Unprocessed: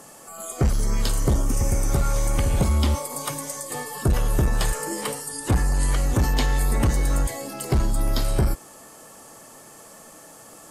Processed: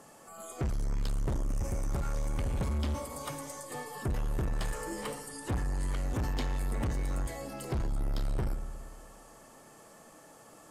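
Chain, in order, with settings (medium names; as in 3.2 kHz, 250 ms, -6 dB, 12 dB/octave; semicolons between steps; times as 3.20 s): treble shelf 4.7 kHz -7.5 dB; on a send at -12 dB: reverberation RT60 1.5 s, pre-delay 58 ms; on the sum: saturation -20.5 dBFS, distortion -13 dB; trim -7 dB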